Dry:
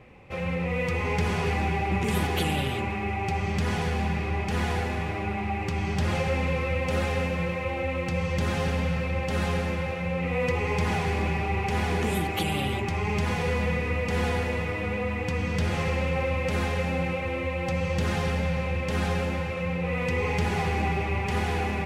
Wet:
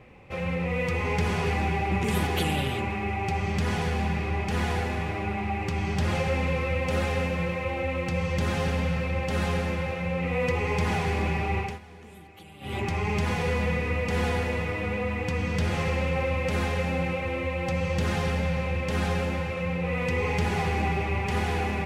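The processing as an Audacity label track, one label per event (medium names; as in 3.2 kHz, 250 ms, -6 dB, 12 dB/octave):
11.580000	12.810000	dip -21 dB, fades 0.21 s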